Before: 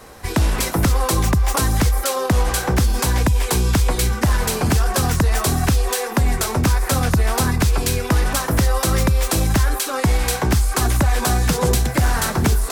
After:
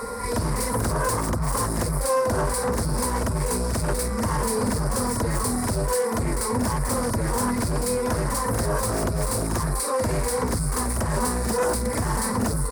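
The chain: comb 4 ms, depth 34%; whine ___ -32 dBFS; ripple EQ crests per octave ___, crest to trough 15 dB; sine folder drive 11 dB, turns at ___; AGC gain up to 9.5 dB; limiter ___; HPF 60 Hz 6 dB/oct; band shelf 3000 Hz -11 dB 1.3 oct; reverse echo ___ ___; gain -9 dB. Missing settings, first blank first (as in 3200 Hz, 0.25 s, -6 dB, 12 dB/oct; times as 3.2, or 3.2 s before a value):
1400 Hz, 0.93, -0.5 dBFS, -10.5 dBFS, 44 ms, -6.5 dB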